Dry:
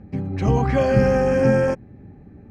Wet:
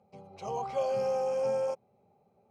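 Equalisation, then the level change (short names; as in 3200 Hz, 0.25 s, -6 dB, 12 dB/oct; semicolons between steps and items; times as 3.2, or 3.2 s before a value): HPF 390 Hz 12 dB/oct; fixed phaser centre 720 Hz, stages 4; -7.5 dB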